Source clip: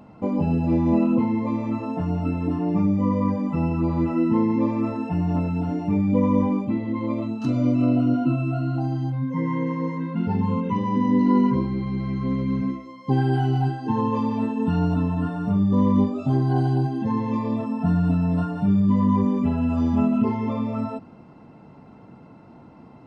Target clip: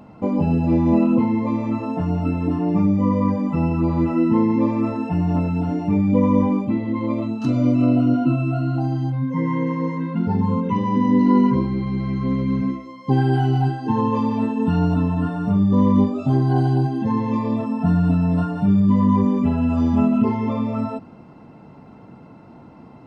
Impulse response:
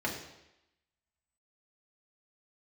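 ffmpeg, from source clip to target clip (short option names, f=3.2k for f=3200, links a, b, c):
-filter_complex "[0:a]asettb=1/sr,asplit=3[a][b][c];[a]atrim=end=10.184[d];[b]atrim=start=10.18:end=10.69,asetpts=PTS-STARTPTS,afade=t=in:d=0.004:c=qsin,afade=t=out:st=0.506:d=0.004:c=qsin,equalizer=f=2.6k:w=2.6:g=-10[e];[c]atrim=start=10.686[f];[d][e]acrossfade=d=0.004:c1=hsin:c2=qsin[g];[g][f]acrossfade=d=0.004:c1=qsin:c2=hsin,volume=3dB"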